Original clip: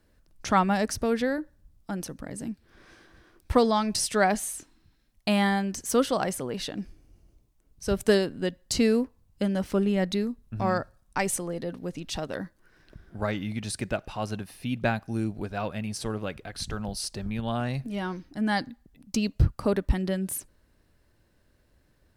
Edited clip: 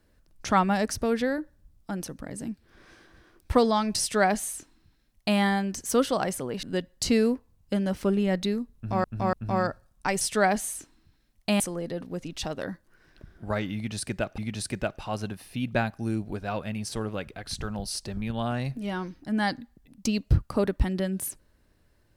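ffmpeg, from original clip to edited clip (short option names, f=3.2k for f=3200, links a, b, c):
-filter_complex "[0:a]asplit=7[a][b][c][d][e][f][g];[a]atrim=end=6.632[h];[b]atrim=start=8.318:end=10.732[i];[c]atrim=start=10.438:end=10.732[j];[d]atrim=start=10.438:end=11.322[k];[e]atrim=start=3.998:end=5.392[l];[f]atrim=start=11.318:end=14.102[m];[g]atrim=start=13.468[n];[h][i]acrossfade=d=0.004:c1=hsin:c2=hsin[o];[o][j]acrossfade=d=0.004:c1=hsin:c2=hsin[p];[p][k]acrossfade=d=0.004:c1=hsin:c2=hsin[q];[q][l]acrossfade=d=0.004:c1=hsin:c2=hsin[r];[r][m]acrossfade=d=0.004:c1=hsin:c2=hsin[s];[s][n]acrossfade=d=0.004:c1=hsin:c2=hsin"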